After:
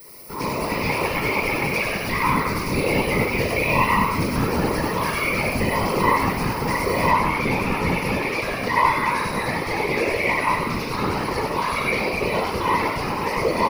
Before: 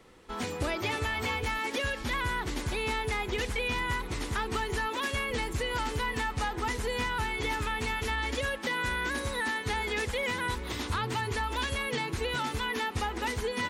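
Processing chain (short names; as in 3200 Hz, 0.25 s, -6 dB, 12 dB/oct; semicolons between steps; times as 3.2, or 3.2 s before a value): added noise blue -51 dBFS; ripple EQ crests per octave 0.87, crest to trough 15 dB; frequency-shifting echo 97 ms, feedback 47%, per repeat +140 Hz, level -4.5 dB; reverb RT60 0.95 s, pre-delay 16 ms, DRR -0.5 dB; whisperiser; high shelf 11000 Hz +6.5 dB, from 7.11 s -4 dB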